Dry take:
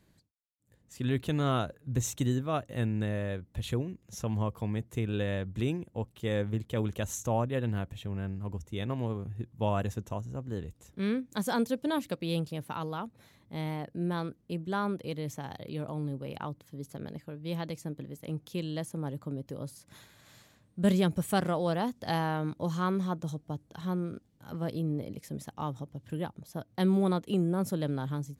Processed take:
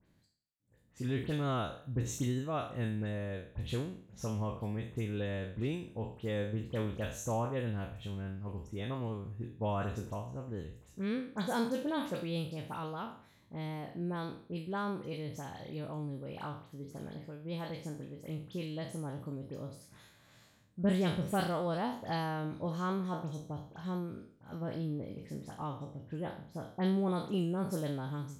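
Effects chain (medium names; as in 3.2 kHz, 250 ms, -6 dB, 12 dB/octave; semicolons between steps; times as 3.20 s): spectral sustain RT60 0.51 s; treble shelf 5.5 kHz -6 dB, from 24.49 s -11.5 dB, from 27.08 s -3 dB; phase dispersion highs, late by 63 ms, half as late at 3 kHz; trim -5 dB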